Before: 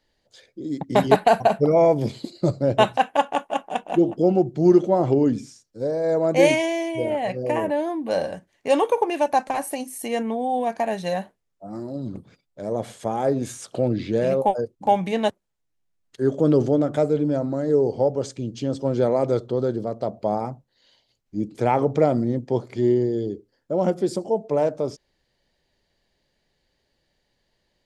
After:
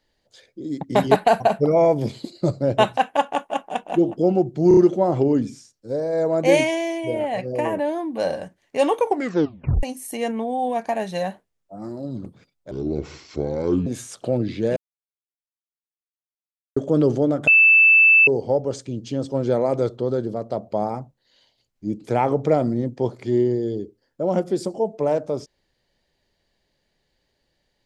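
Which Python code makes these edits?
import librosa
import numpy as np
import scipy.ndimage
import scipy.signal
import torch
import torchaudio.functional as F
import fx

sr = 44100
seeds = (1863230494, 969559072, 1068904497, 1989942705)

y = fx.edit(x, sr, fx.stutter(start_s=4.68, slice_s=0.03, count=4),
    fx.tape_stop(start_s=8.96, length_s=0.78),
    fx.speed_span(start_s=12.62, length_s=0.75, speed=0.65),
    fx.silence(start_s=14.27, length_s=2.0),
    fx.bleep(start_s=16.98, length_s=0.8, hz=2640.0, db=-9.5), tone=tone)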